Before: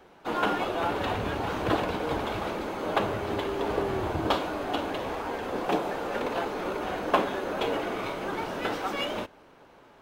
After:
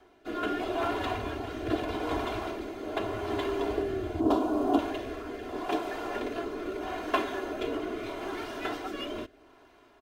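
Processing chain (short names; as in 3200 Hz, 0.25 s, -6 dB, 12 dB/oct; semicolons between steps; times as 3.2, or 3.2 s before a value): 4.2–4.79 graphic EQ 250/500/1000/2000/4000 Hz +11/+4/+4/-12/-4 dB; rotary speaker horn 0.8 Hz; comb 2.9 ms, depth 76%; gain -3 dB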